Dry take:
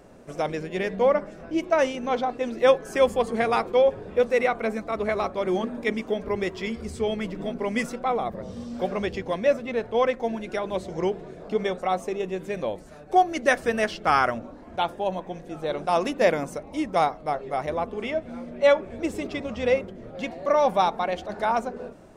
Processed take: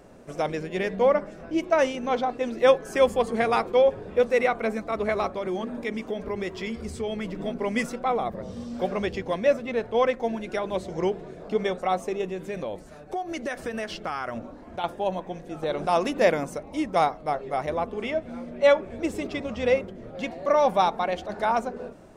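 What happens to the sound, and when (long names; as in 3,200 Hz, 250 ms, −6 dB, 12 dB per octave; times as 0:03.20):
0:05.28–0:07.31: downward compressor 2.5 to 1, threshold −27 dBFS
0:12.26–0:14.84: downward compressor, threshold −27 dBFS
0:15.63–0:16.35: upward compression, threshold −24 dBFS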